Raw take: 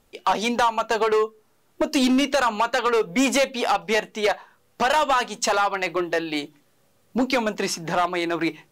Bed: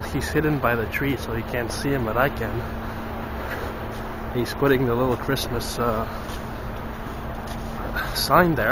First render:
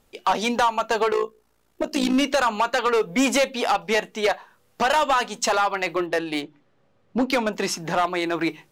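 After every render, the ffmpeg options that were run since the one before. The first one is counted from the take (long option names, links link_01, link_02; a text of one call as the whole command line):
ffmpeg -i in.wav -filter_complex "[0:a]asplit=3[link_01][link_02][link_03];[link_01]afade=type=out:start_time=1.1:duration=0.02[link_04];[link_02]tremolo=f=57:d=0.71,afade=type=in:start_time=1.1:duration=0.02,afade=type=out:start_time=2.13:duration=0.02[link_05];[link_03]afade=type=in:start_time=2.13:duration=0.02[link_06];[link_04][link_05][link_06]amix=inputs=3:normalize=0,asettb=1/sr,asplit=3[link_07][link_08][link_09];[link_07]atrim=end=6.064[link_10];[link_08]atrim=start=6.06:end=7.53,asetpts=PTS-STARTPTS,afade=type=in:duration=0.004:curve=qsin,afade=type=out:start_time=1.466:duration=0.004:curve=qsin,adynamicsmooth=sensitivity=4:basefreq=3100[link_11];[link_09]atrim=start=7.526[link_12];[link_10][link_11]acrossfade=duration=0.004:curve1=hsin:curve2=qsin[link_13];[link_13][link_12]acrossfade=duration=0.004:curve1=qsin:curve2=hsin" out.wav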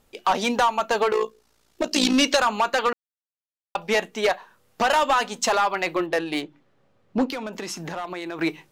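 ffmpeg -i in.wav -filter_complex "[0:a]asettb=1/sr,asplit=3[link_01][link_02][link_03];[link_01]atrim=end=1.214[link_04];[link_02]atrim=start=1.21:end=2.37,asetpts=PTS-STARTPTS,afade=type=in:duration=0.004:curve=qsin,afade=type=out:start_time=1.156:duration=0.004:curve=qsin,equalizer=frequency=5000:width_type=o:width=1.9:gain=9[link_05];[link_03]atrim=start=2.366[link_06];[link_04][link_05]acrossfade=duration=0.004:curve1=hsin:curve2=qsin[link_07];[link_07][link_06]acrossfade=duration=0.004:curve1=qsin:curve2=hsin,asettb=1/sr,asplit=3[link_08][link_09][link_10];[link_08]atrim=end=7.274[link_11];[link_09]atrim=start=7.27:end=8.39,asetpts=PTS-STARTPTS,afade=type=in:duration=0.004:curve=qsin,afade=type=out:start_time=1.116:duration=0.004:curve=qsin,acompressor=threshold=-28dB:ratio=6:attack=3.2:release=140:knee=1:detection=peak[link_12];[link_10]atrim=start=8.386[link_13];[link_11][link_12]acrossfade=duration=0.004:curve1=hsin:curve2=qsin[link_14];[link_14][link_13]acrossfade=duration=0.004:curve1=qsin:curve2=hsin,asplit=3[link_15][link_16][link_17];[link_15]atrim=end=2.93,asetpts=PTS-STARTPTS,afade=type=out:start_time=2.926:duration=0.004:curve=hsin[link_18];[link_16]atrim=start=2.93:end=3.75,asetpts=PTS-STARTPTS,volume=0[link_19];[link_17]atrim=start=3.75,asetpts=PTS-STARTPTS,afade=type=in:duration=0.004:curve=hsin[link_20];[link_18][link_19][link_20]concat=n=3:v=0:a=1" out.wav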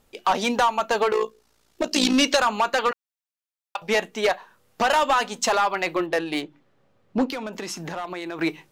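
ffmpeg -i in.wav -filter_complex "[0:a]asettb=1/sr,asplit=3[link_01][link_02][link_03];[link_01]atrim=end=2.914[link_04];[link_02]atrim=start=2.91:end=3.82,asetpts=PTS-STARTPTS,afade=type=in:duration=0.004:curve=qsin,afade=type=out:start_time=0.906:duration=0.004:curve=qsin,highpass=880[link_05];[link_03]atrim=start=3.816[link_06];[link_04][link_05]acrossfade=duration=0.004:curve1=hsin:curve2=qsin[link_07];[link_07][link_06]acrossfade=duration=0.004:curve1=qsin:curve2=hsin" out.wav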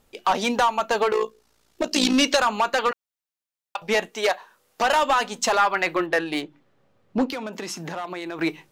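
ffmpeg -i in.wav -filter_complex "[0:a]asettb=1/sr,asplit=3[link_01][link_02][link_03];[link_01]atrim=end=4.084[link_04];[link_02]atrim=start=4.08:end=4.83,asetpts=PTS-STARTPTS,afade=type=in:duration=0.004:curve=qsin,afade=type=out:start_time=0.746:duration=0.004:curve=qsin,bass=frequency=250:gain=-11,treble=frequency=4000:gain=3[link_05];[link_03]atrim=start=4.826[link_06];[link_04][link_05]acrossfade=duration=0.004:curve1=hsin:curve2=qsin[link_07];[link_07][link_06]acrossfade=duration=0.004:curve1=qsin:curve2=hsin,asettb=1/sr,asplit=3[link_08][link_09][link_10];[link_08]atrim=end=5.584[link_11];[link_09]atrim=start=5.58:end=6.27,asetpts=PTS-STARTPTS,afade=type=in:duration=0.004:curve=qsin,afade=type=out:start_time=0.686:duration=0.004:curve=qsin,equalizer=frequency=1600:width_type=o:width=0.77:gain=6[link_12];[link_10]atrim=start=6.266[link_13];[link_11][link_12]acrossfade=duration=0.004:curve1=hsin:curve2=qsin[link_14];[link_14][link_13]acrossfade=duration=0.004:curve1=qsin:curve2=hsin,asettb=1/sr,asplit=3[link_15][link_16][link_17];[link_15]atrim=end=7.334[link_18];[link_16]atrim=start=7.33:end=8.17,asetpts=PTS-STARTPTS,afade=type=in:duration=0.004:curve=qsin,afade=type=out:start_time=0.836:duration=0.004:curve=qsin,highpass=55[link_19];[link_17]atrim=start=8.166[link_20];[link_18][link_19]acrossfade=duration=0.004:curve1=hsin:curve2=qsin[link_21];[link_21][link_20]acrossfade=duration=0.004:curve1=qsin:curve2=hsin" out.wav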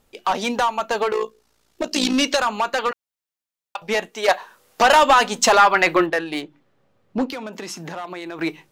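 ffmpeg -i in.wav -filter_complex "[0:a]asettb=1/sr,asplit=3[link_01][link_02][link_03];[link_01]atrim=end=4.284[link_04];[link_02]atrim=start=4.28:end=6.1,asetpts=PTS-STARTPTS,afade=type=in:duration=0.004:curve=qsin,afade=type=out:start_time=1.816:duration=0.004:curve=qsin,acontrast=86[link_05];[link_03]atrim=start=6.096[link_06];[link_04][link_05]acrossfade=duration=0.004:curve1=hsin:curve2=qsin[link_07];[link_07][link_06]acrossfade=duration=0.004:curve1=qsin:curve2=hsin" out.wav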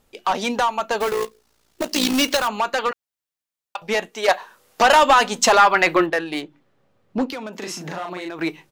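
ffmpeg -i in.wav -filter_complex "[0:a]asettb=1/sr,asplit=3[link_01][link_02][link_03];[link_01]atrim=end=1.004[link_04];[link_02]atrim=start=1:end=2.48,asetpts=PTS-STARTPTS,afade=type=in:duration=0.004:curve=qsin,afade=type=out:start_time=1.476:duration=0.004:curve=qsin,acrusher=bits=2:mode=log:mix=0:aa=0.000001[link_05];[link_03]atrim=start=2.476[link_06];[link_04][link_05]acrossfade=duration=0.004:curve1=hsin:curve2=qsin[link_07];[link_07][link_06]acrossfade=duration=0.004:curve1=qsin:curve2=hsin,asplit=3[link_08][link_09][link_10];[link_08]afade=type=out:start_time=7.6:duration=0.02[link_11];[link_09]asplit=2[link_12][link_13];[link_13]adelay=39,volume=-3dB[link_14];[link_12][link_14]amix=inputs=2:normalize=0,afade=type=in:start_time=7.6:duration=0.02,afade=type=out:start_time=8.28:duration=0.02[link_15];[link_10]afade=type=in:start_time=8.28:duration=0.02[link_16];[link_11][link_15][link_16]amix=inputs=3:normalize=0" out.wav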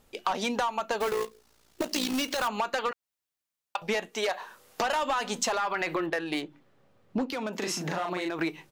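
ffmpeg -i in.wav -af "alimiter=limit=-13.5dB:level=0:latency=1:release=66,acompressor=threshold=-26dB:ratio=6" out.wav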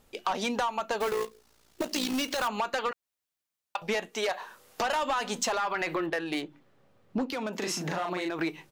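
ffmpeg -i in.wav -af "asoftclip=type=tanh:threshold=-18dB" out.wav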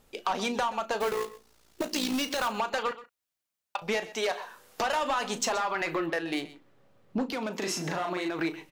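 ffmpeg -i in.wav -filter_complex "[0:a]asplit=2[link_01][link_02];[link_02]adelay=36,volume=-13dB[link_03];[link_01][link_03]amix=inputs=2:normalize=0,aecho=1:1:127:0.141" out.wav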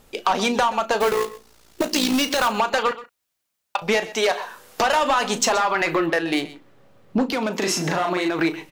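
ffmpeg -i in.wav -af "volume=9dB" out.wav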